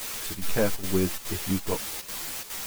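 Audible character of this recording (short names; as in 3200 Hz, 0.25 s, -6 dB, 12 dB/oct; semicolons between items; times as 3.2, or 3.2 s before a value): a quantiser's noise floor 6-bit, dither triangular; chopped level 2.4 Hz, depth 65%, duty 80%; a shimmering, thickened sound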